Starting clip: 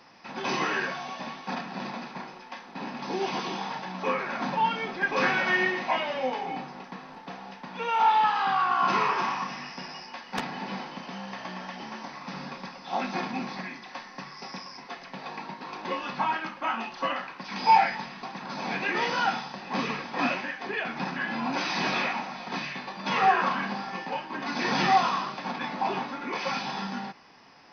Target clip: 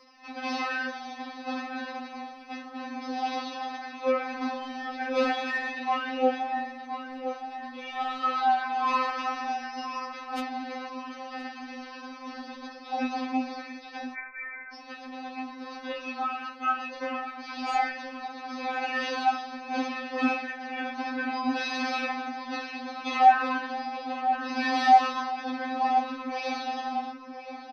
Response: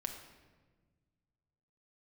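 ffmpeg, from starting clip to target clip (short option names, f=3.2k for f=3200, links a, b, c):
-filter_complex "[0:a]asoftclip=type=tanh:threshold=-13.5dB,asplit=2[a][b];[b]adelay=1022,lowpass=f=1.7k:p=1,volume=-8dB,asplit=2[c][d];[d]adelay=1022,lowpass=f=1.7k:p=1,volume=0.44,asplit=2[e][f];[f]adelay=1022,lowpass=f=1.7k:p=1,volume=0.44,asplit=2[g][h];[h]adelay=1022,lowpass=f=1.7k:p=1,volume=0.44,asplit=2[i][j];[j]adelay=1022,lowpass=f=1.7k:p=1,volume=0.44[k];[a][c][e][g][i][k]amix=inputs=6:normalize=0,asettb=1/sr,asplit=3[l][m][n];[l]atrim=end=14.144[o];[m]atrim=start=14.14:end=14.73,asetpts=PTS-STARTPTS,afade=t=in:d=0.004:c=qsin,afade=t=out:st=0.586:d=0.004:c=qsin,lowpass=f=2.2k:t=q:w=0.5098,lowpass=f=2.2k:t=q:w=0.6013,lowpass=f=2.2k:t=q:w=0.9,lowpass=f=2.2k:t=q:w=2.563,afreqshift=-2600[p];[n]atrim=start=14.726[q];[o][p]acrossfade=d=0.004:c1=hsin:c2=qsin[r];[r][q]acrossfade=d=0.004:c1=qsin:c2=hsin,afftfilt=real='re*3.46*eq(mod(b,12),0)':imag='im*3.46*eq(mod(b,12),0)':win_size=2048:overlap=0.75"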